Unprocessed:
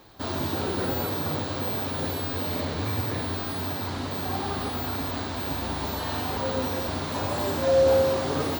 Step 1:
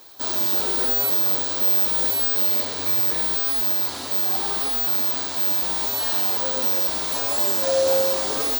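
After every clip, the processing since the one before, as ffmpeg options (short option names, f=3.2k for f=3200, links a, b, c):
-af "bass=f=250:g=-14,treble=f=4k:g=14"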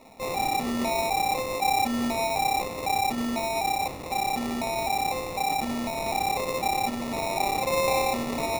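-af "acrusher=samples=28:mix=1:aa=0.000001,volume=-5dB"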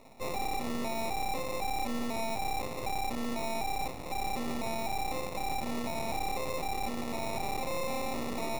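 -af "aeval=exprs='max(val(0),0)':c=same,alimiter=level_in=1.5dB:limit=-24dB:level=0:latency=1:release=18,volume=-1.5dB"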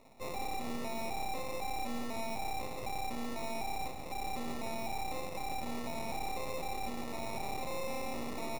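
-af "aecho=1:1:166:0.335,volume=-5dB"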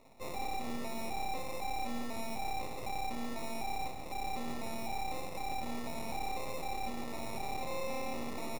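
-filter_complex "[0:a]asplit=2[a][b];[b]adelay=26,volume=-11.5dB[c];[a][c]amix=inputs=2:normalize=0,volume=-1dB"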